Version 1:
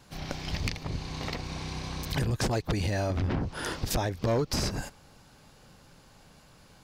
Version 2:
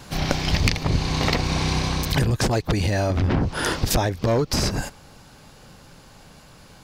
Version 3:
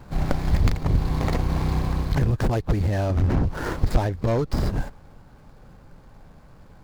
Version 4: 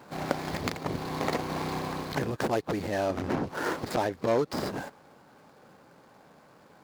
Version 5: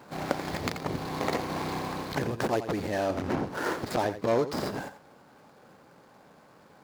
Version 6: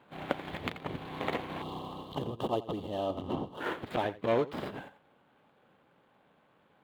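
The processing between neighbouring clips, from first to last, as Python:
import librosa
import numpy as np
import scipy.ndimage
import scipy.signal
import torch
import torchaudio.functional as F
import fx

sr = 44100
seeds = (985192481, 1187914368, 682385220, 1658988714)

y1 = fx.rider(x, sr, range_db=5, speed_s=0.5)
y1 = y1 * librosa.db_to_amplitude(9.0)
y2 = scipy.ndimage.median_filter(y1, 15, mode='constant')
y2 = fx.low_shelf(y2, sr, hz=65.0, db=11.0)
y2 = y2 * librosa.db_to_amplitude(-3.0)
y3 = scipy.signal.sosfilt(scipy.signal.butter(2, 280.0, 'highpass', fs=sr, output='sos'), y2)
y4 = y3 + 10.0 ** (-12.0 / 20.0) * np.pad(y3, (int(86 * sr / 1000.0), 0))[:len(y3)]
y5 = fx.high_shelf_res(y4, sr, hz=4100.0, db=-8.0, q=3.0)
y5 = fx.spec_box(y5, sr, start_s=1.62, length_s=1.99, low_hz=1300.0, high_hz=2700.0, gain_db=-17)
y5 = fx.upward_expand(y5, sr, threshold_db=-40.0, expansion=1.5)
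y5 = y5 * librosa.db_to_amplitude(-2.0)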